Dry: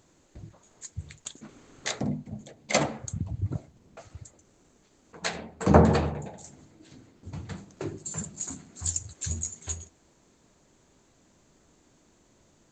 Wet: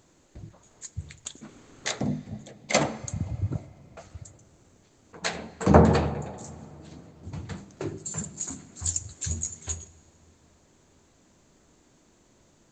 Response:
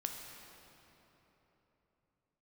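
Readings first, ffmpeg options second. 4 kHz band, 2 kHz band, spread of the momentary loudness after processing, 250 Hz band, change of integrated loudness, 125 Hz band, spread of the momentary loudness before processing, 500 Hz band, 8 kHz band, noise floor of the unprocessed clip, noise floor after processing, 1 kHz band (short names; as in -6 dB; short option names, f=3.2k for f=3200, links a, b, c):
+1.5 dB, +1.5 dB, 23 LU, +1.5 dB, +1.5 dB, +1.5 dB, 24 LU, +1.5 dB, +1.5 dB, -63 dBFS, -62 dBFS, +1.5 dB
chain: -filter_complex "[0:a]asplit=2[a][b];[1:a]atrim=start_sample=2205[c];[b][c]afir=irnorm=-1:irlink=0,volume=-13.5dB[d];[a][d]amix=inputs=2:normalize=0"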